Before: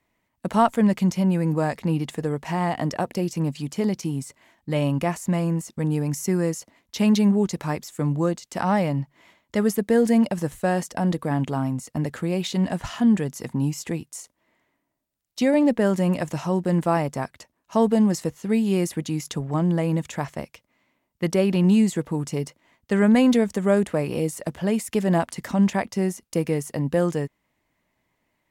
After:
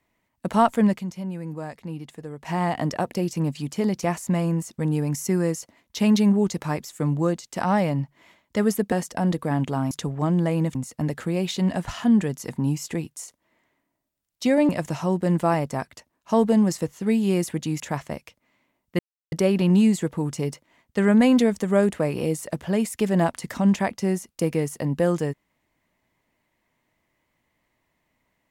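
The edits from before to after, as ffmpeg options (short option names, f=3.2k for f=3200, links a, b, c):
-filter_complex "[0:a]asplit=10[a][b][c][d][e][f][g][h][i][j];[a]atrim=end=1.03,asetpts=PTS-STARTPTS,afade=t=out:st=0.82:d=0.21:c=qsin:silence=0.298538[k];[b]atrim=start=1.03:end=2.38,asetpts=PTS-STARTPTS,volume=-10.5dB[l];[c]atrim=start=2.38:end=4.032,asetpts=PTS-STARTPTS,afade=t=in:d=0.21:c=qsin:silence=0.298538[m];[d]atrim=start=5.018:end=9.912[n];[e]atrim=start=10.718:end=11.712[o];[f]atrim=start=19.228:end=20.072[p];[g]atrim=start=11.708:end=15.652[q];[h]atrim=start=16.118:end=19.232[r];[i]atrim=start=20.068:end=21.26,asetpts=PTS-STARTPTS,afade=t=out:st=1.188:d=0.004:c=hsin,apad=pad_dur=0.33[s];[j]atrim=start=21.26,asetpts=PTS-STARTPTS,afade=t=in:d=0.004:c=hsin[t];[k][l][m]concat=n=3:v=0:a=1[u];[u][n]acrossfade=d=0.004:c1=hsin:c2=hsin[v];[v][o]acrossfade=d=0.004:c1=hsin:c2=hsin[w];[w][p]acrossfade=d=0.004:c1=hsin:c2=hsin[x];[x][q]acrossfade=d=0.004:c1=hsin:c2=hsin[y];[y][r]acrossfade=d=0.004:c1=hsin:c2=hsin[z];[s][t]concat=n=2:v=0:a=1[aa];[z][aa]acrossfade=d=0.004:c1=hsin:c2=hsin"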